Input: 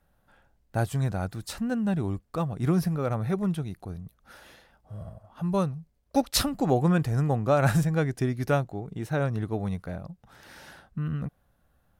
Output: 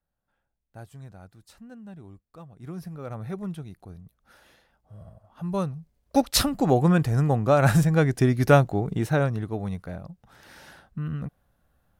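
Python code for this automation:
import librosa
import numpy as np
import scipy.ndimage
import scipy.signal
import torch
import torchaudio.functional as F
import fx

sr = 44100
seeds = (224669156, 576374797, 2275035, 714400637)

y = fx.gain(x, sr, db=fx.line((2.52, -16.5), (3.21, -6.0), (5.01, -6.0), (6.16, 3.0), (7.63, 3.0), (8.9, 10.0), (9.42, -0.5)))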